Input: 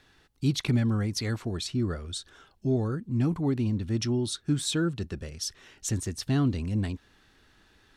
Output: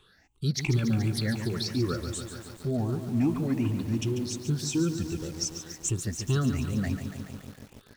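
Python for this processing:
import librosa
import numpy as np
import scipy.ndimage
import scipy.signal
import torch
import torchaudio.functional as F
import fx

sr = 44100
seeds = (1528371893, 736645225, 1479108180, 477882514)

y = fx.spec_ripple(x, sr, per_octave=0.66, drift_hz=2.7, depth_db=18)
y = fx.graphic_eq_31(y, sr, hz=(630, 1250, 2000), db=(-11, -10, -12), at=(3.74, 5.16))
y = fx.echo_crushed(y, sr, ms=142, feedback_pct=80, bits=7, wet_db=-9.0)
y = F.gain(torch.from_numpy(y), -4.0).numpy()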